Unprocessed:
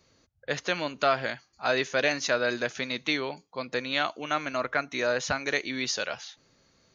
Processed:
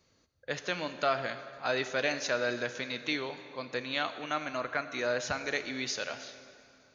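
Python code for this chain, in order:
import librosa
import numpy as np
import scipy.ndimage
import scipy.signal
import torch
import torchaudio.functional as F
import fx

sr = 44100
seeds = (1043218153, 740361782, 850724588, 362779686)

y = fx.rev_plate(x, sr, seeds[0], rt60_s=2.6, hf_ratio=0.8, predelay_ms=0, drr_db=10.0)
y = F.gain(torch.from_numpy(y), -5.0).numpy()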